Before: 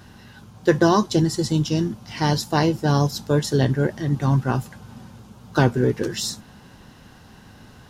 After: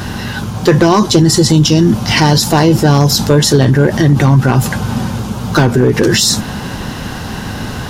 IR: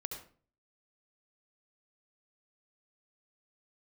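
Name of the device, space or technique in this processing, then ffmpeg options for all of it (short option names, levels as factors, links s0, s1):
loud club master: -af "acompressor=threshold=0.1:ratio=3,asoftclip=type=hard:threshold=0.158,alimiter=level_in=18.8:limit=0.891:release=50:level=0:latency=1,volume=0.891"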